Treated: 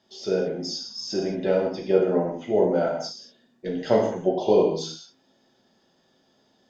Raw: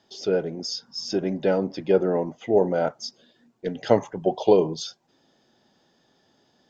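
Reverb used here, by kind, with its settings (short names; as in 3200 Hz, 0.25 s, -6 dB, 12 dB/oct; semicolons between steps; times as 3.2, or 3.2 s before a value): non-linear reverb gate 0.25 s falling, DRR -2 dB; gain -4.5 dB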